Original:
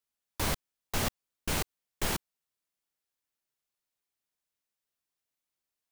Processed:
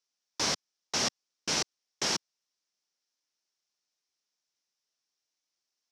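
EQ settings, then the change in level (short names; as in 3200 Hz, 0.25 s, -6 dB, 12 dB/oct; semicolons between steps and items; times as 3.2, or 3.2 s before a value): HPF 200 Hz; synth low-pass 5600 Hz, resonance Q 4.6; 0.0 dB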